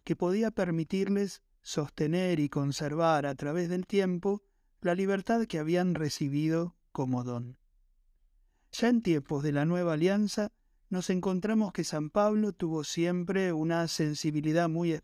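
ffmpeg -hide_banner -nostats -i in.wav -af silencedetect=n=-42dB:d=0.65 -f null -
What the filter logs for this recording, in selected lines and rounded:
silence_start: 7.51
silence_end: 8.74 | silence_duration: 1.22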